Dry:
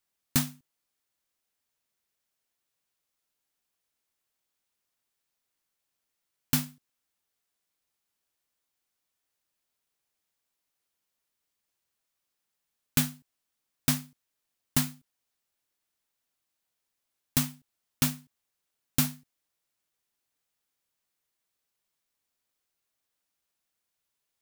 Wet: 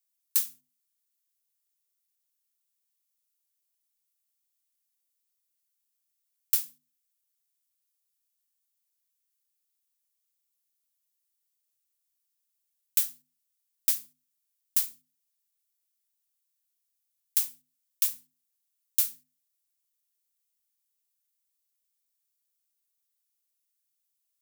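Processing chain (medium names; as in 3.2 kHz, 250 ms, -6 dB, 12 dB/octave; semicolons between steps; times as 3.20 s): differentiator; hum notches 50/100/150/200/250/300 Hz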